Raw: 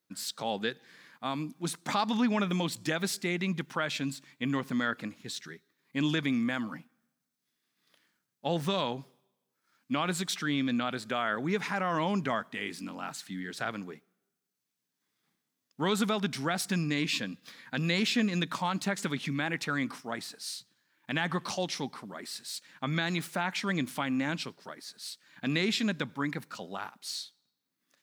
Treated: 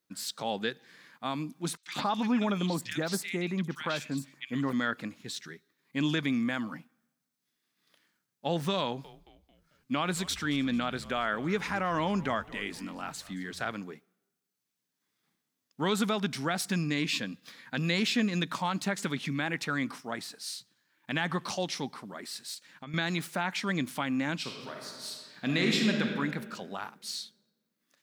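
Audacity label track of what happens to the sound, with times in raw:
1.770000	4.730000	three-band delay without the direct sound mids, highs, lows 60/100 ms, splits 1,800/5,500 Hz
8.820000	13.730000	echo with shifted repeats 222 ms, feedback 47%, per repeat −100 Hz, level −19 dB
22.540000	22.940000	downward compressor 3 to 1, threshold −43 dBFS
24.380000	26.020000	thrown reverb, RT60 1.8 s, DRR 0.5 dB

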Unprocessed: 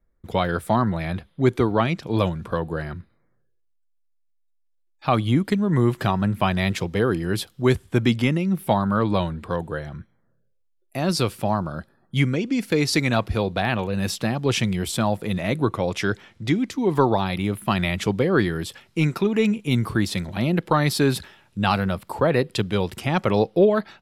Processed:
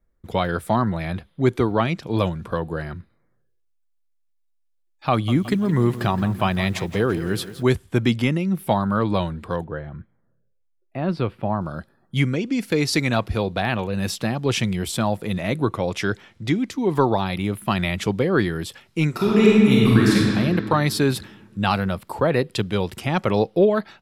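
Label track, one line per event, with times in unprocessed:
5.110000	7.630000	feedback echo at a low word length 169 ms, feedback 55%, word length 7 bits, level −13.5 dB
9.640000	11.610000	high-frequency loss of the air 450 metres
19.100000	20.160000	thrown reverb, RT60 2.4 s, DRR −5.5 dB

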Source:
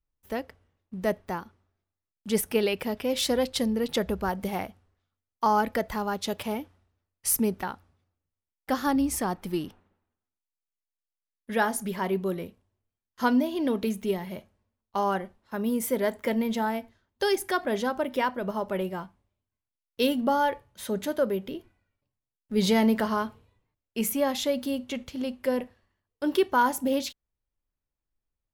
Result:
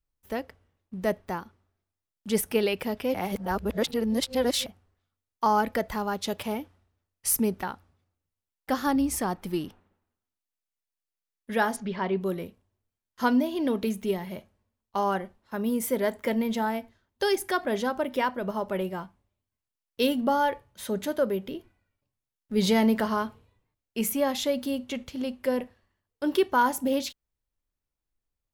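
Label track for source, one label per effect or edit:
3.140000	4.660000	reverse
11.760000	12.210000	low-pass filter 4,700 Hz 24 dB per octave

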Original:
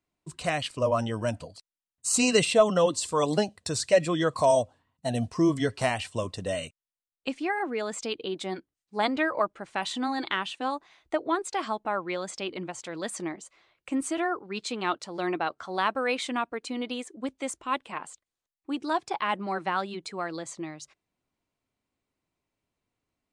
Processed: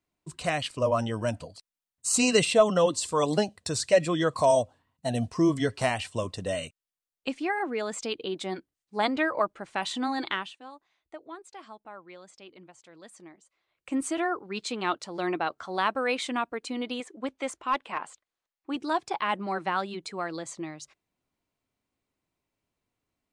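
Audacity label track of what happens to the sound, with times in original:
10.290000	13.960000	duck −15.5 dB, fades 0.29 s
17.000000	18.760000	mid-hump overdrive drive 10 dB, tone 2,300 Hz, clips at −14.5 dBFS

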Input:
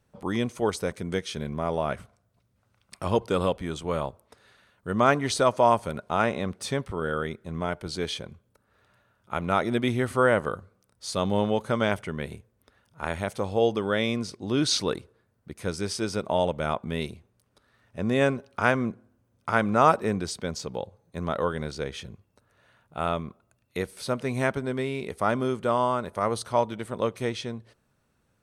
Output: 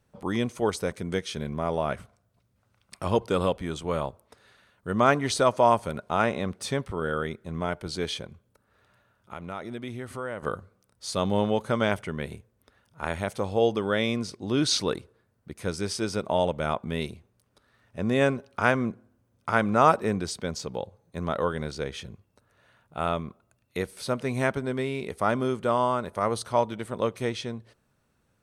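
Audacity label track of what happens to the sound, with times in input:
8.260000	10.430000	downward compressor 2 to 1, threshold −41 dBFS

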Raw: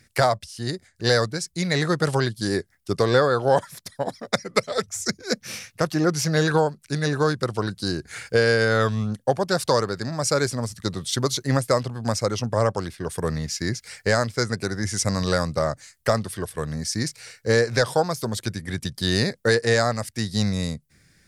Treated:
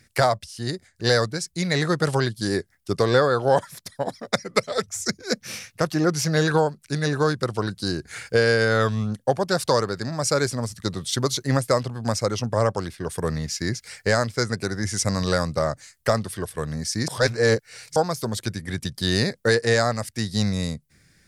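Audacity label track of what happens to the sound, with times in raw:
17.080000	17.960000	reverse

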